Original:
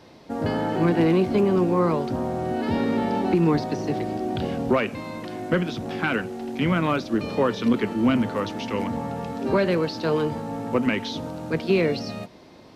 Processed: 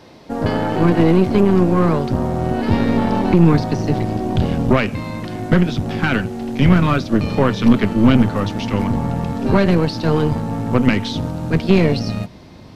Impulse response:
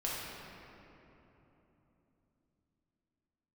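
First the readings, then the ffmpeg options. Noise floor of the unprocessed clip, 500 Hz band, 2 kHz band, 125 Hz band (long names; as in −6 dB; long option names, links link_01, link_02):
−48 dBFS, +4.0 dB, +5.0 dB, +11.5 dB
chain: -af "asubboost=boost=3.5:cutoff=190,aeval=exprs='0.501*(cos(1*acos(clip(val(0)/0.501,-1,1)))-cos(1*PI/2))+0.0501*(cos(6*acos(clip(val(0)/0.501,-1,1)))-cos(6*PI/2))':channel_layout=same,volume=5.5dB"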